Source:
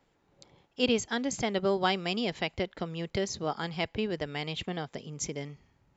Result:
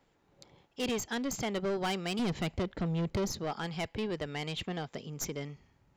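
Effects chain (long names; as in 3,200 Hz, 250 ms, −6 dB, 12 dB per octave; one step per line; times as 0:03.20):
stylus tracing distortion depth 0.026 ms
0:02.19–0:03.32: low-shelf EQ 460 Hz +12 dB
soft clipping −28 dBFS, distortion −7 dB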